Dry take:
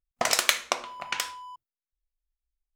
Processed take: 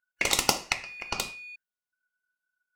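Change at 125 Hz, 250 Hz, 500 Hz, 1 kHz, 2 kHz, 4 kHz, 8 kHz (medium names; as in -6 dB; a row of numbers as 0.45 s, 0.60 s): +9.0 dB, +5.5 dB, -2.0 dB, -2.5 dB, -1.0 dB, -1.5 dB, -1.0 dB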